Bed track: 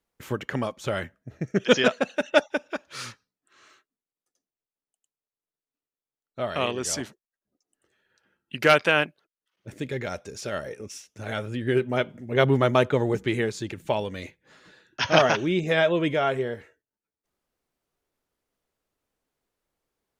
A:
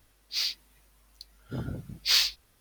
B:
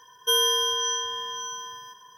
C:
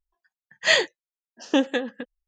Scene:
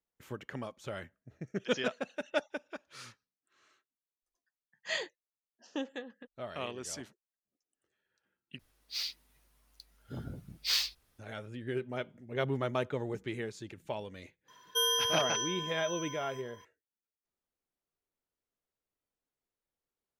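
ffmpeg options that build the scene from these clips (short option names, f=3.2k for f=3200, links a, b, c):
-filter_complex "[0:a]volume=-12.5dB,asplit=2[a][b];[a]atrim=end=8.594[c];[1:a]atrim=end=2.6,asetpts=PTS-STARTPTS,volume=-7dB[d];[b]atrim=start=11.186[e];[3:a]atrim=end=2.27,asetpts=PTS-STARTPTS,volume=-16.5dB,afade=t=in:d=0.004:c=hsin,afade=t=out:st=2.266:d=0.004:c=hsin,adelay=4220[f];[2:a]atrim=end=2.17,asetpts=PTS-STARTPTS,volume=-7.5dB,afade=t=in:d=0.004:c=hsin,afade=t=out:st=2.166:d=0.004:c=hsin,adelay=14480[g];[c][d]acrossfade=d=0.004:c1=hsin:c2=hsin[h];[h][e]acrossfade=d=0.004:c1=hsin:c2=hsin[i];[i][f][g]amix=inputs=3:normalize=0"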